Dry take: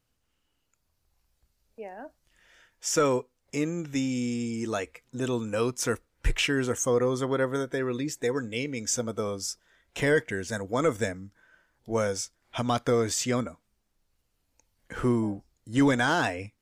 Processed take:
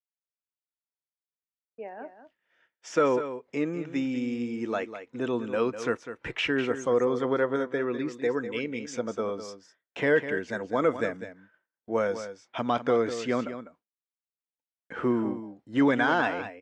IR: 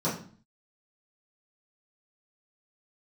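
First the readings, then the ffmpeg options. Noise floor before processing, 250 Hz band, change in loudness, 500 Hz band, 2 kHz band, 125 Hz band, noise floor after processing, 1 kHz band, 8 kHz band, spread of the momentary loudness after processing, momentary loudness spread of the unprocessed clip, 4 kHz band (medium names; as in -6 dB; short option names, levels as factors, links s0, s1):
-76 dBFS, 0.0 dB, 0.0 dB, +1.0 dB, +0.5 dB, -7.5 dB, under -85 dBFS, +1.0 dB, -15.5 dB, 14 LU, 12 LU, -5.0 dB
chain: -filter_complex "[0:a]highpass=210,lowpass=2700,asplit=2[s0][s1];[s1]aecho=0:1:200:0.282[s2];[s0][s2]amix=inputs=2:normalize=0,agate=range=0.0224:threshold=0.00251:ratio=3:detection=peak,volume=1.12"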